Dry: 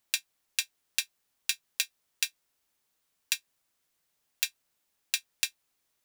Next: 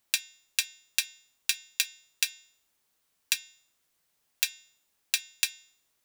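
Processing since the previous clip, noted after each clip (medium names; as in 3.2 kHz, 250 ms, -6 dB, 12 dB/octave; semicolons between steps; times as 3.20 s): de-hum 305.4 Hz, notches 26; trim +2.5 dB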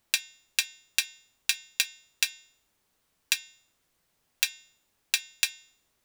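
tilt EQ -1.5 dB/octave; trim +4.5 dB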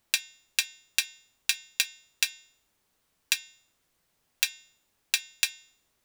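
no audible change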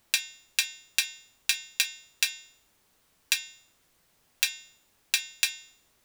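loudness maximiser +7.5 dB; trim -1 dB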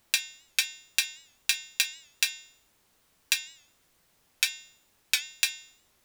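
warped record 78 rpm, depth 100 cents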